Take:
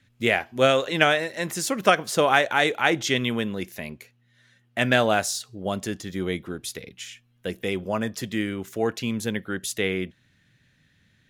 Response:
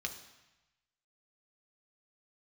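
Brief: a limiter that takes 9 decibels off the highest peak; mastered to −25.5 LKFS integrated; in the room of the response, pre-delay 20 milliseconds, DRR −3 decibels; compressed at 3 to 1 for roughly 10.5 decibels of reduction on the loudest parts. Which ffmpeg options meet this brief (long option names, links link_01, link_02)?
-filter_complex "[0:a]acompressor=threshold=-28dB:ratio=3,alimiter=limit=-21.5dB:level=0:latency=1,asplit=2[link_01][link_02];[1:a]atrim=start_sample=2205,adelay=20[link_03];[link_02][link_03]afir=irnorm=-1:irlink=0,volume=2dB[link_04];[link_01][link_04]amix=inputs=2:normalize=0,volume=4dB"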